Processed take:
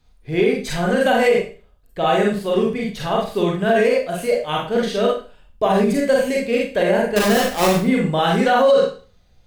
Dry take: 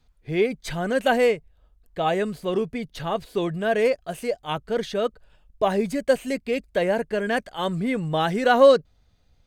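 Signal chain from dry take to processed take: 7.16–7.72 half-waves squared off; Schroeder reverb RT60 0.38 s, combs from 31 ms, DRR -2.5 dB; maximiser +8.5 dB; gain -6 dB

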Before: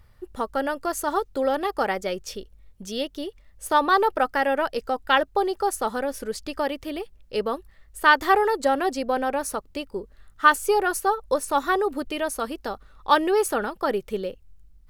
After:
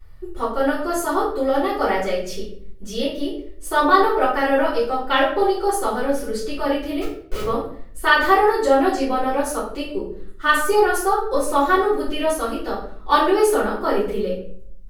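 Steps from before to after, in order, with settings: 7.01–7.45 Schmitt trigger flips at -36.5 dBFS; shoebox room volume 80 m³, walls mixed, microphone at 3.4 m; gain -9 dB

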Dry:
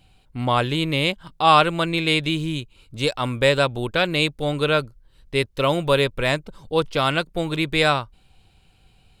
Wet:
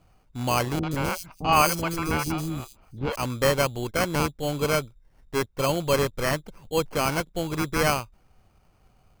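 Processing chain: sample-and-hold 12×; 0.79–3.16 three bands offset in time lows, mids, highs 40/120 ms, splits 490/4100 Hz; gain -4 dB

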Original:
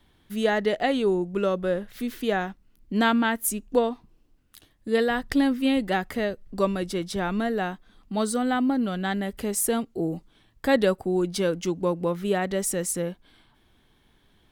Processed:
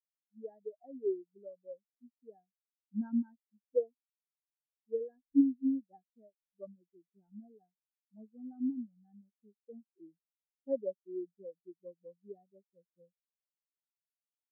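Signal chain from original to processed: LPF 1800 Hz 6 dB/oct; spectral expander 4:1; gain -8 dB

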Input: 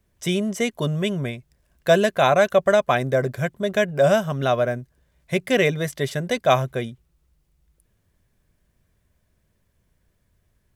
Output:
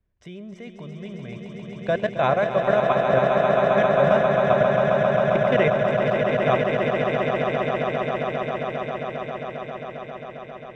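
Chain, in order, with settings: LPF 2700 Hz 12 dB/oct; low shelf 61 Hz +8.5 dB; level quantiser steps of 18 dB; on a send: swelling echo 0.134 s, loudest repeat 8, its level -6 dB; on the sum: gain -1.5 dB

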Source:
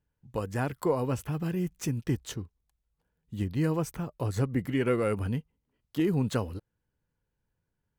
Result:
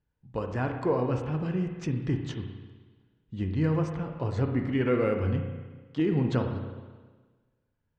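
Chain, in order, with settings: Bessel low-pass 3800 Hz, order 4; spring tank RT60 1.4 s, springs 32/53 ms, chirp 75 ms, DRR 4 dB

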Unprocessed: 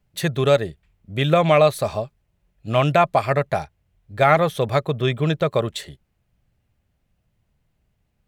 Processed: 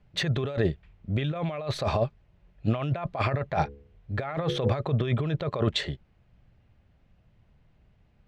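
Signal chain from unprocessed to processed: 3.52–4.72 de-hum 70.73 Hz, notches 7; negative-ratio compressor -27 dBFS, ratio -1; air absorption 170 m

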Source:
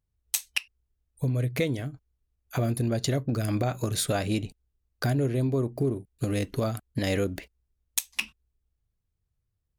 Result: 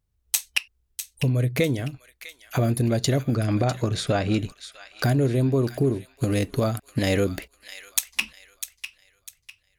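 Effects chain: 3.19–4.39 air absorption 100 m; thin delay 0.65 s, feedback 33%, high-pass 1600 Hz, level -10 dB; gain +4.5 dB

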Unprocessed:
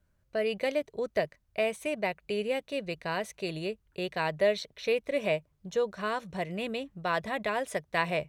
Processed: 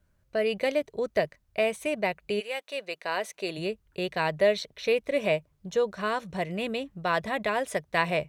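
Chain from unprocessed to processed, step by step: 2.39–3.57 HPF 930 Hz -> 240 Hz 12 dB/oct; gain +3 dB

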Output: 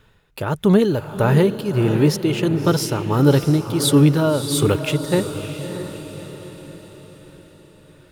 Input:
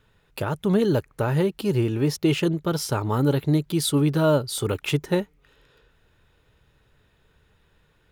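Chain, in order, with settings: tremolo 1.5 Hz, depth 61%; diffused feedback echo 0.619 s, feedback 49%, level -9.5 dB; gain +7.5 dB

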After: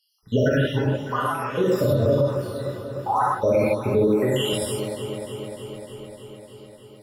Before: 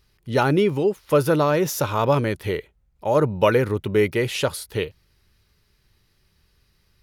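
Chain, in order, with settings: random spectral dropouts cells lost 83%; 0.69–2.34 LPF 2700 Hz 6 dB/oct; echo with dull and thin repeats by turns 0.151 s, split 890 Hz, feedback 86%, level -11.5 dB; non-linear reverb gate 0.18 s flat, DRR -7.5 dB; limiter -11.5 dBFS, peak gain reduction 11.5 dB; 4.07–4.53 HPF 150 Hz

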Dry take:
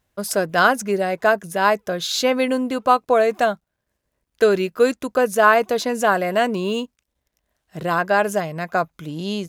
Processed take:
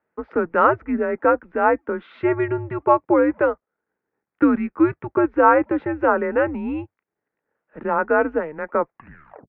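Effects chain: tape stop at the end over 0.55 s; mistuned SSB -150 Hz 330–2200 Hz

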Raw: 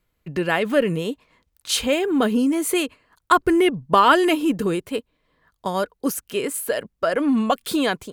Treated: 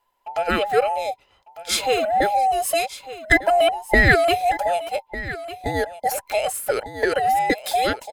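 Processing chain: band inversion scrambler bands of 1000 Hz; on a send: echo 1.2 s -15 dB; 6.11–7.82 on the sum: three-band squash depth 70%

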